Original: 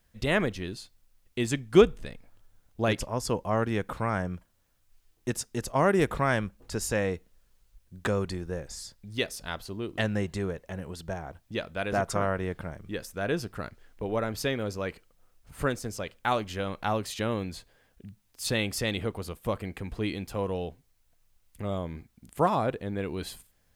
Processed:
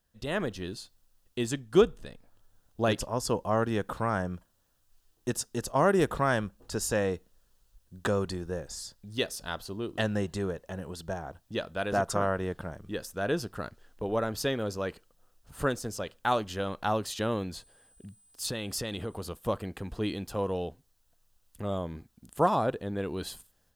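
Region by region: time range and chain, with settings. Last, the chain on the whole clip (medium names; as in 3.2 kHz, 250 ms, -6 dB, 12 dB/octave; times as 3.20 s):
17.55–19.24 s: compression, threshold -29 dBFS + whistle 8.1 kHz -62 dBFS
whole clip: peaking EQ 2.2 kHz -10 dB 0.35 oct; level rider gain up to 7 dB; bass shelf 180 Hz -4 dB; trim -6 dB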